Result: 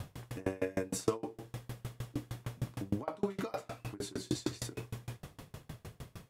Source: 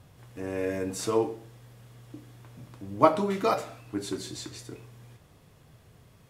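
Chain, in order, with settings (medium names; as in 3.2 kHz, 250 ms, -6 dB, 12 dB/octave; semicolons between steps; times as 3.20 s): compression 8:1, threshold -39 dBFS, peak gain reduction 24.5 dB; sawtooth tremolo in dB decaying 6.5 Hz, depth 32 dB; trim +15 dB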